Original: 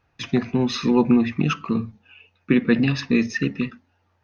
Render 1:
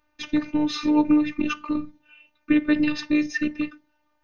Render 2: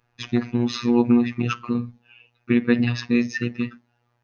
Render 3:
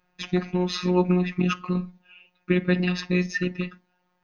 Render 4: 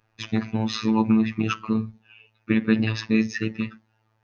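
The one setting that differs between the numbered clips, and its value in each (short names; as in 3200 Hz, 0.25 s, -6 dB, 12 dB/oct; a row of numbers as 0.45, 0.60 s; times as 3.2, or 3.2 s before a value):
robotiser, frequency: 300, 120, 180, 110 Hz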